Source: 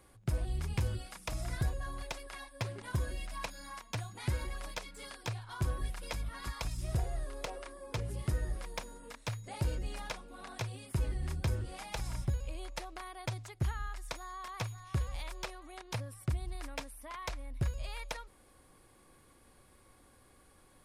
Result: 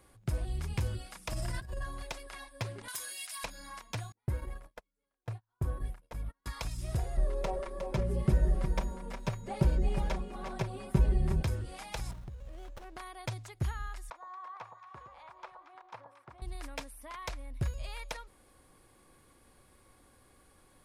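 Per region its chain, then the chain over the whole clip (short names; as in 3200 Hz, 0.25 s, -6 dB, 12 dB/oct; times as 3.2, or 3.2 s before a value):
1.31–1.85 ripple EQ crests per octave 1.3, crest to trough 7 dB + negative-ratio compressor -35 dBFS, ratio -0.5
2.88–3.44 HPF 1300 Hz 6 dB/oct + tilt +4 dB/oct
4.12–6.46 bell 4800 Hz -13.5 dB 2.5 oct + gate -41 dBFS, range -36 dB
7.17–11.43 tilt shelf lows +7 dB, about 1300 Hz + comb 5.2 ms, depth 88% + echo 0.359 s -9 dB
12.11–12.97 compressor 8:1, threshold -40 dBFS + running maximum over 17 samples
14.1–16.42 band-pass 1000 Hz, Q 2 + echo with dull and thin repeats by turns 0.114 s, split 1100 Hz, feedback 64%, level -7 dB
whole clip: dry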